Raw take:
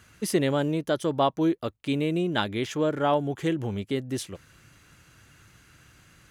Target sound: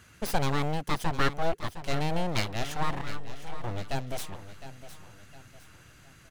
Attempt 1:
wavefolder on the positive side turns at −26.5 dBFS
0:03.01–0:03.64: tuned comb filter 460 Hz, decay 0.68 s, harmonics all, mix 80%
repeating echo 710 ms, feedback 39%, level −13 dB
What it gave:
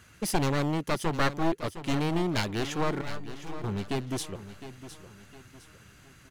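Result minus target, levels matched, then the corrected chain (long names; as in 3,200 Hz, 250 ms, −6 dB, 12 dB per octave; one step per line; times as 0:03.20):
wavefolder on the positive side: distortion −17 dB
wavefolder on the positive side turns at −38.5 dBFS
0:03.01–0:03.64: tuned comb filter 460 Hz, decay 0.68 s, harmonics all, mix 80%
repeating echo 710 ms, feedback 39%, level −13 dB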